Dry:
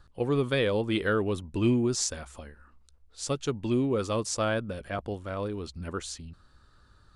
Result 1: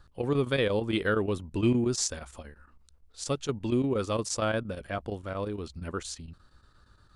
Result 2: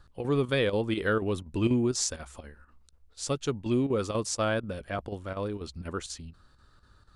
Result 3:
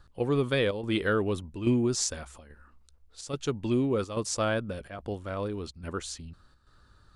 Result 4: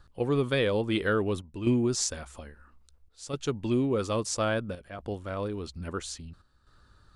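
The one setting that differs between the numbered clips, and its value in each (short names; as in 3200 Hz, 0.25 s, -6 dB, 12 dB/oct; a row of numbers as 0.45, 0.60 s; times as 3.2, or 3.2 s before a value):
chopper, rate: 8.6, 4.1, 1.2, 0.6 Hz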